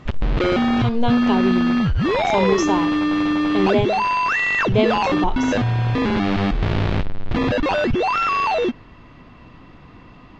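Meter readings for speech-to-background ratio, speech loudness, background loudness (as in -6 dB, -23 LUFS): -3.5 dB, -23.5 LUFS, -20.0 LUFS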